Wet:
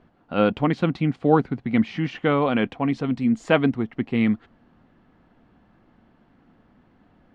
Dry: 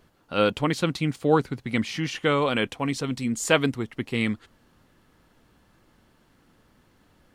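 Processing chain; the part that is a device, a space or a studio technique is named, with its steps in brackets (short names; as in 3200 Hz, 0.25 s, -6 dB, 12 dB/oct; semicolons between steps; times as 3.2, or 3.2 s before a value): inside a cardboard box (LPF 2500 Hz 12 dB/oct; small resonant body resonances 220/710 Hz, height 7 dB, ringing for 20 ms)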